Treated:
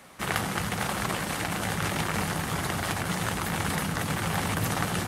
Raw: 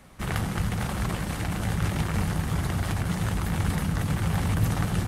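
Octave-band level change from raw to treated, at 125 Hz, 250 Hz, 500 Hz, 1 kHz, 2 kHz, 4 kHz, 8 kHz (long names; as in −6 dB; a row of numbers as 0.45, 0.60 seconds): −6.5, −2.5, +2.5, +4.0, +5.0, +5.0, +5.0 decibels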